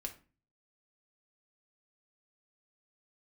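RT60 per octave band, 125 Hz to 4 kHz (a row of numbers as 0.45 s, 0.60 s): 0.65 s, 0.55 s, 0.35 s, 0.35 s, 0.35 s, 0.25 s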